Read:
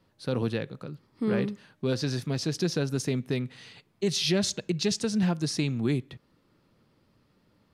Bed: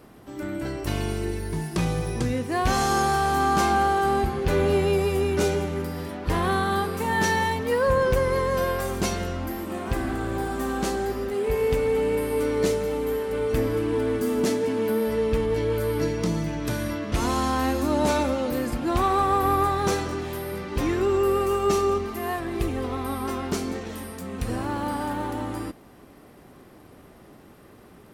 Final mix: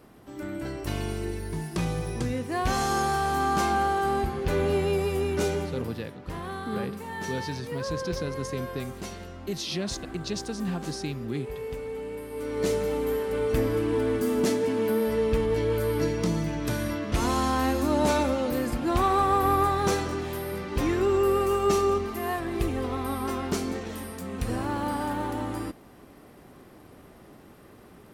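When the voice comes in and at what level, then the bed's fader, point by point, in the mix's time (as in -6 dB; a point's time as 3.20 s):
5.45 s, -5.5 dB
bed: 5.61 s -3.5 dB
6.10 s -12 dB
12.30 s -12 dB
12.76 s -1 dB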